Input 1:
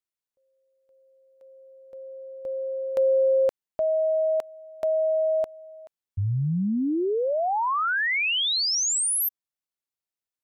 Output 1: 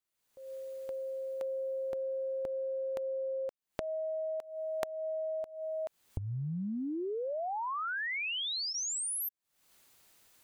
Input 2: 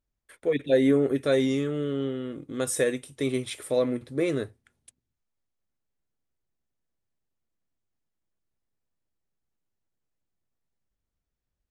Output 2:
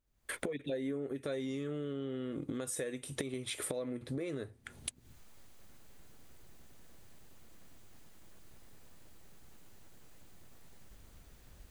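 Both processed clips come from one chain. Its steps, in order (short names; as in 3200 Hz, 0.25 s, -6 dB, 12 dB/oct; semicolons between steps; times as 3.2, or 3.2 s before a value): recorder AGC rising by 53 dB/s, up to +28 dB; notch 5400 Hz, Q 20; compressor 4:1, threshold -38 dBFS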